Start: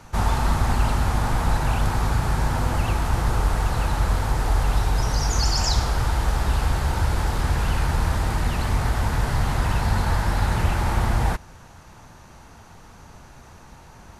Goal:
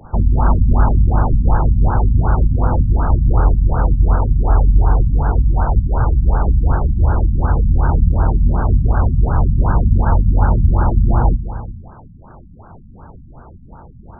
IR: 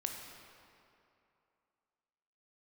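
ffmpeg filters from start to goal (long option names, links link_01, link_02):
-filter_complex "[0:a]asplit=2[link_01][link_02];[link_02]highshelf=frequency=4000:width_type=q:width=3:gain=8.5[link_03];[1:a]atrim=start_sample=2205,afade=type=out:start_time=0.43:duration=0.01,atrim=end_sample=19404,asetrate=29106,aresample=44100[link_04];[link_03][link_04]afir=irnorm=-1:irlink=0,volume=-5dB[link_05];[link_01][link_05]amix=inputs=2:normalize=0,afftfilt=real='re*lt(b*sr/1024,250*pow(1700/250,0.5+0.5*sin(2*PI*2.7*pts/sr)))':imag='im*lt(b*sr/1024,250*pow(1700/250,0.5+0.5*sin(2*PI*2.7*pts/sr)))':win_size=1024:overlap=0.75,volume=3.5dB"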